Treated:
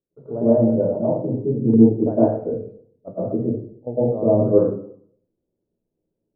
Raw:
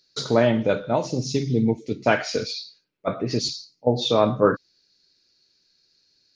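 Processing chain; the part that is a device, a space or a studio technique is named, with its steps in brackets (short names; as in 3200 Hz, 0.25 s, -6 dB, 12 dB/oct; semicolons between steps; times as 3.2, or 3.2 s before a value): next room (LPF 650 Hz 24 dB/oct; reverb RT60 0.60 s, pre-delay 0.102 s, DRR -11.5 dB); 1.73–2.26 dynamic EQ 320 Hz, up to +7 dB, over -19 dBFS, Q 1; gain -9 dB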